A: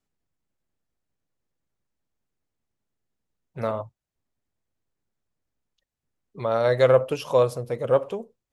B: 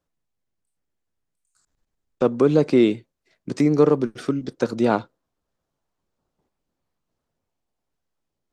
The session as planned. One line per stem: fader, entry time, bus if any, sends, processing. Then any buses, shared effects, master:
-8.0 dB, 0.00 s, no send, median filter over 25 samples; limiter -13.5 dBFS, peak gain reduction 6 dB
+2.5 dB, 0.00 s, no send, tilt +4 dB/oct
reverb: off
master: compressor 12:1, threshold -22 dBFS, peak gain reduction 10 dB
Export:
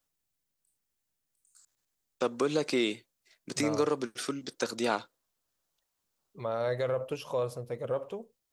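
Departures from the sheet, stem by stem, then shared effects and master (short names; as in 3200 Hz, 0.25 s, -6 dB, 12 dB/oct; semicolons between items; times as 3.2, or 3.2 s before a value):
stem A: missing median filter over 25 samples; stem B +2.5 dB -> -5.0 dB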